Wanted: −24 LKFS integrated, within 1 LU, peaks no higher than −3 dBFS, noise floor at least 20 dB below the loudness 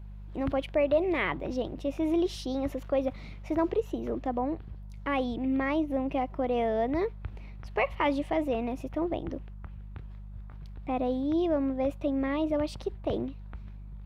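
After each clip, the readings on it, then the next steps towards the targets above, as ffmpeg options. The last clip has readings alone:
mains hum 50 Hz; hum harmonics up to 200 Hz; level of the hum −40 dBFS; integrated loudness −30.5 LKFS; sample peak −15.0 dBFS; target loudness −24.0 LKFS
→ -af "bandreject=frequency=50:width_type=h:width=4,bandreject=frequency=100:width_type=h:width=4,bandreject=frequency=150:width_type=h:width=4,bandreject=frequency=200:width_type=h:width=4"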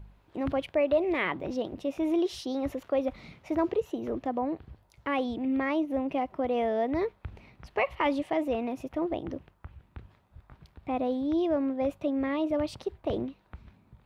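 mains hum none found; integrated loudness −30.5 LKFS; sample peak −15.5 dBFS; target loudness −24.0 LKFS
→ -af "volume=6.5dB"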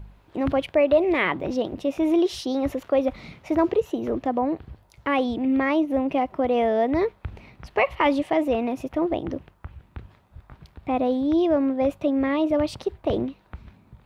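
integrated loudness −24.0 LKFS; sample peak −9.0 dBFS; background noise floor −58 dBFS

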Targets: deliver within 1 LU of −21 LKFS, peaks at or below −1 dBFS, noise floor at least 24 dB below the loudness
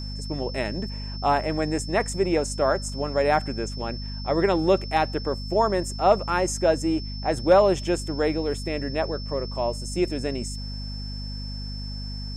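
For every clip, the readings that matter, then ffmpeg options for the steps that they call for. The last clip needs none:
mains hum 50 Hz; hum harmonics up to 250 Hz; level of the hum −31 dBFS; interfering tone 5,300 Hz; level of the tone −38 dBFS; integrated loudness −25.5 LKFS; sample peak −7.5 dBFS; target loudness −21.0 LKFS
→ -af "bandreject=frequency=50:width_type=h:width=4,bandreject=frequency=100:width_type=h:width=4,bandreject=frequency=150:width_type=h:width=4,bandreject=frequency=200:width_type=h:width=4,bandreject=frequency=250:width_type=h:width=4"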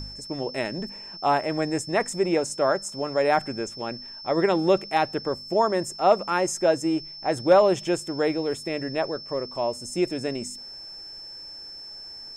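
mains hum none found; interfering tone 5,300 Hz; level of the tone −38 dBFS
→ -af "bandreject=frequency=5300:width=30"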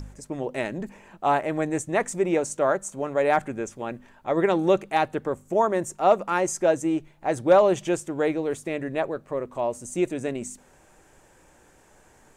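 interfering tone none found; integrated loudness −25.0 LKFS; sample peak −8.0 dBFS; target loudness −21.0 LKFS
→ -af "volume=4dB"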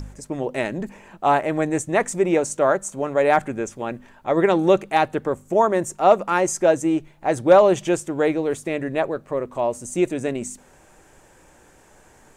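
integrated loudness −21.0 LKFS; sample peak −4.0 dBFS; background noise floor −53 dBFS

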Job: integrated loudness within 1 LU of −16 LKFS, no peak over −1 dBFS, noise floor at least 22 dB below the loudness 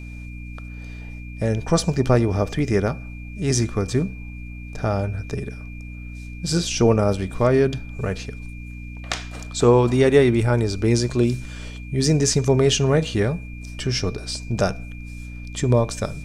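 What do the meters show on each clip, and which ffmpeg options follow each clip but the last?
mains hum 60 Hz; hum harmonics up to 300 Hz; level of the hum −33 dBFS; interfering tone 2,400 Hz; level of the tone −43 dBFS; integrated loudness −21.5 LKFS; sample peak −2.5 dBFS; target loudness −16.0 LKFS
→ -af "bandreject=frequency=60:width_type=h:width=4,bandreject=frequency=120:width_type=h:width=4,bandreject=frequency=180:width_type=h:width=4,bandreject=frequency=240:width_type=h:width=4,bandreject=frequency=300:width_type=h:width=4"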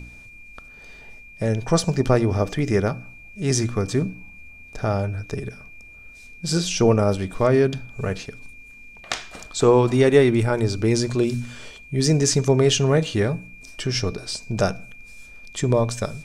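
mains hum none found; interfering tone 2,400 Hz; level of the tone −43 dBFS
→ -af "bandreject=frequency=2400:width=30"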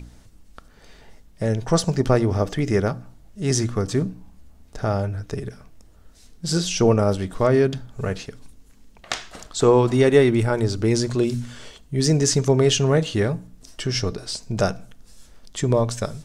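interfering tone none found; integrated loudness −21.5 LKFS; sample peak −3.0 dBFS; target loudness −16.0 LKFS
→ -af "volume=5.5dB,alimiter=limit=-1dB:level=0:latency=1"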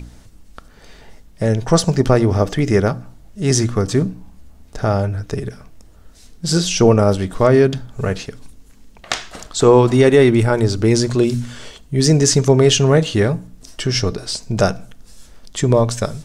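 integrated loudness −16.5 LKFS; sample peak −1.0 dBFS; background noise floor −45 dBFS

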